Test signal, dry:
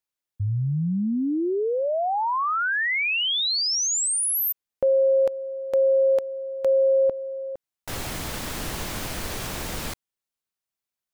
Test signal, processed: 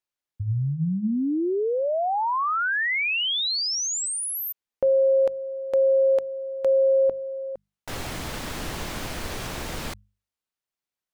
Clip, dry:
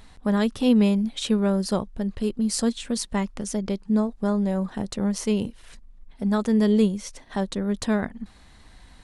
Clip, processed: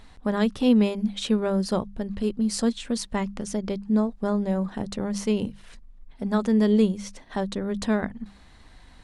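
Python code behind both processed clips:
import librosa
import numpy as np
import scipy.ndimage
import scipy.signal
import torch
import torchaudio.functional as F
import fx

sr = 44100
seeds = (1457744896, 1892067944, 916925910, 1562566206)

y = fx.high_shelf(x, sr, hz=7500.0, db=-7.5)
y = fx.hum_notches(y, sr, base_hz=50, count=4)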